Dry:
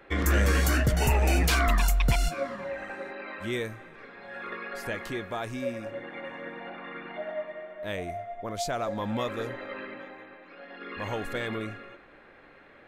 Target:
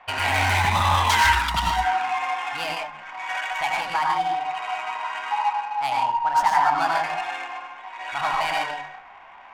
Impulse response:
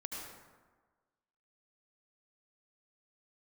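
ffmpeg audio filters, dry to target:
-filter_complex "[0:a]asplit=2[link_01][link_02];[link_02]asoftclip=type=hard:threshold=-27.5dB,volume=-4dB[link_03];[link_01][link_03]amix=inputs=2:normalize=0[link_04];[1:a]atrim=start_sample=2205,atrim=end_sample=6615,asetrate=29106,aresample=44100[link_05];[link_04][link_05]afir=irnorm=-1:irlink=0,asetrate=59535,aresample=44100,bandreject=frequency=50:width_type=h:width=6,bandreject=frequency=100:width_type=h:width=6,bandreject=frequency=150:width_type=h:width=6,bandreject=frequency=200:width_type=h:width=6,bandreject=frequency=250:width_type=h:width=6,adynamicsmooth=sensitivity=6.5:basefreq=1700,lowshelf=frequency=620:width_type=q:width=3:gain=-11.5,volume=4dB"

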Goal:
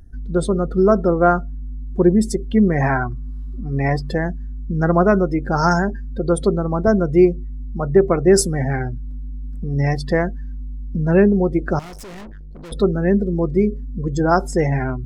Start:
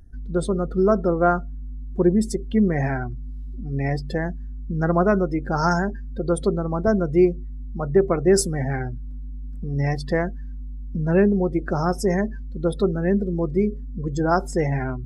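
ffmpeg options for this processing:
ffmpeg -i in.wav -filter_complex "[0:a]asettb=1/sr,asplit=3[link_01][link_02][link_03];[link_01]atrim=end=2.814[link_04];[link_02]atrim=start=2.81:end=4.11,asetpts=PTS-STARTPTS,afade=type=in:duration=0.004:curve=qsin,afade=type=out:start_time=1.296:duration=0.004:curve=qsin,equalizer=frequency=1100:width_type=o:width=0.7:gain=14[link_05];[link_03]atrim=start=4.106[link_06];[link_04][link_05]acrossfade=duration=0.004:curve1=hsin:curve2=qsin[link_07];[link_07][link_06]acrossfade=duration=0.004:curve1=qsin:curve2=hsin,asettb=1/sr,asplit=3[link_08][link_09][link_10];[link_08]atrim=end=11.794[link_11];[link_09]atrim=start=11.79:end=12.72,asetpts=PTS-STARTPTS,afade=type=in:duration=0.004:curve=qsin,afade=type=out:start_time=0.926:duration=0.004:curve=qsin,aeval=exprs='(tanh(89.1*val(0)+0.35)-tanh(0.35))/89.1':channel_layout=same[link_12];[link_10]atrim=start=12.716[link_13];[link_11][link_12]acrossfade=duration=0.004:curve1=hsin:curve2=qsin[link_14];[link_14][link_13]acrossfade=duration=0.004:curve1=qsin:curve2=hsin,volume=4dB" out.wav

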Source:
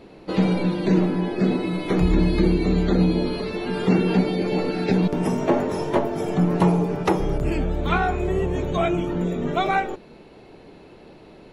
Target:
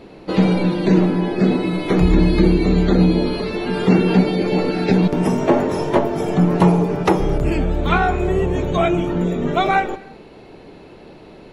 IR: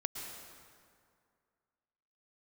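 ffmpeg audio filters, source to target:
-filter_complex "[0:a]asplit=2[link_01][link_02];[1:a]atrim=start_sample=2205,afade=type=out:start_time=0.38:duration=0.01,atrim=end_sample=17199,lowpass=8200[link_03];[link_02][link_03]afir=irnorm=-1:irlink=0,volume=-15.5dB[link_04];[link_01][link_04]amix=inputs=2:normalize=0,volume=3.5dB"

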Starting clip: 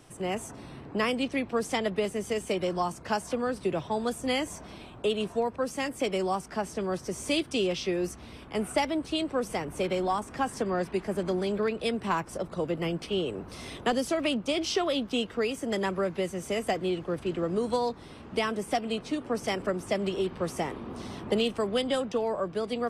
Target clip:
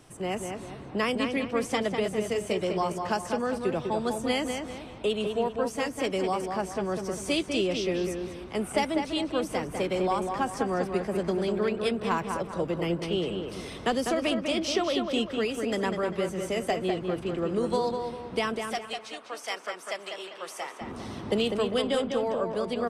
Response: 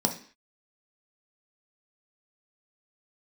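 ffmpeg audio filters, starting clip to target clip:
-filter_complex "[0:a]asettb=1/sr,asplit=3[link_01][link_02][link_03];[link_01]atrim=end=18.564[link_04];[link_02]atrim=start=18.56:end=20.81,asetpts=PTS-STARTPTS,afade=type=in:duration=0.004:curve=qsin,afade=type=out:start_time=2.246:duration=0.004:curve=qsin,highpass=870[link_05];[link_03]atrim=start=20.806[link_06];[link_04][link_05]acrossfade=duration=0.004:curve1=hsin:curve2=qsin[link_07];[link_07][link_06]acrossfade=duration=0.004:curve1=qsin:curve2=hsin,asplit=2[link_08][link_09];[link_09]adelay=199,lowpass=frequency=3100:poles=1,volume=-5dB,asplit=2[link_10][link_11];[link_11]adelay=199,lowpass=frequency=3100:poles=1,volume=0.41,asplit=2[link_12][link_13];[link_13]adelay=199,lowpass=frequency=3100:poles=1,volume=0.41,asplit=2[link_14][link_15];[link_15]adelay=199,lowpass=frequency=3100:poles=1,volume=0.41,asplit=2[link_16][link_17];[link_17]adelay=199,lowpass=frequency=3100:poles=1,volume=0.41[link_18];[link_08][link_10][link_12][link_14][link_16][link_18]amix=inputs=6:normalize=0"

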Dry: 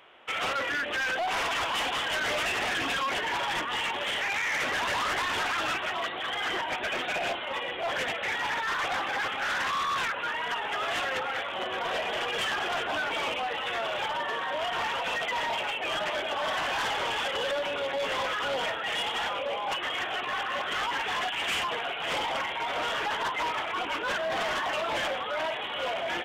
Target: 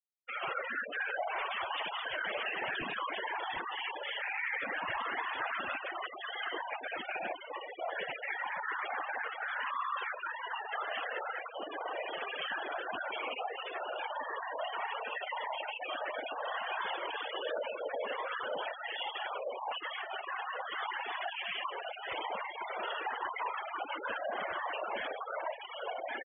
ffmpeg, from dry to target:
ffmpeg -i in.wav -af "lowpass=frequency=3600:width=0.5412,lowpass=frequency=3600:width=1.3066,afftfilt=real='hypot(re,im)*cos(2*PI*random(0))':imag='hypot(re,im)*sin(2*PI*random(1))':win_size=512:overlap=0.75,afftfilt=real='re*gte(hypot(re,im),0.0251)':imag='im*gte(hypot(re,im),0.0251)':win_size=1024:overlap=0.75" out.wav

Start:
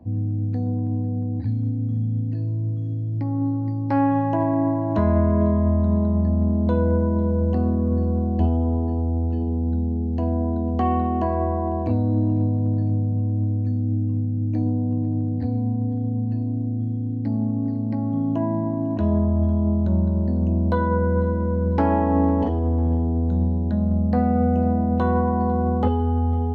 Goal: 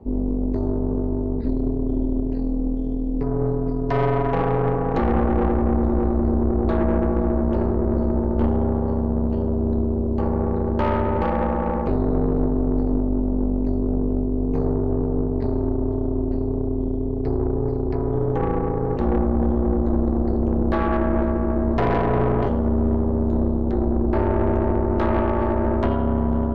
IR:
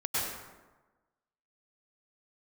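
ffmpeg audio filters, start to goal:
-af "aeval=exprs='val(0)*sin(2*PI*150*n/s)':channel_layout=same,aeval=exprs='(tanh(12.6*val(0)+0.5)-tanh(0.5))/12.6':channel_layout=same,volume=7.5dB"

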